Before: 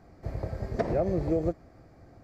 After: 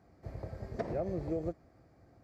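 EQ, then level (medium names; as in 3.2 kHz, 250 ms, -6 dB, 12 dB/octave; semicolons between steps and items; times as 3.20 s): high-pass 49 Hz; -8.0 dB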